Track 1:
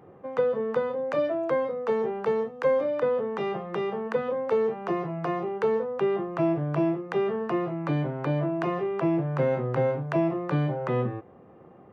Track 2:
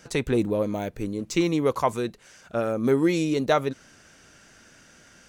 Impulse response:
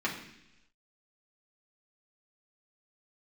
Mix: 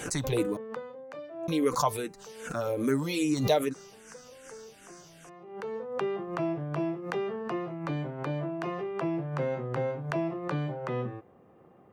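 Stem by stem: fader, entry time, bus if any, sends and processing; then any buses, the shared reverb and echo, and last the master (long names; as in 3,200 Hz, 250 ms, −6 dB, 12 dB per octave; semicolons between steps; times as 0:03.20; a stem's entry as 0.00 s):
−6.5 dB, 0.00 s, no send, automatic ducking −17 dB, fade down 1.90 s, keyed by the second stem
−4.0 dB, 0.00 s, muted 0:00.57–0:01.48, no send, comb filter 6.8 ms, depth 47%; frequency shifter mixed with the dry sound −2.5 Hz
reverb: not used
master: high-shelf EQ 4,500 Hz +11.5 dB; background raised ahead of every attack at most 74 dB per second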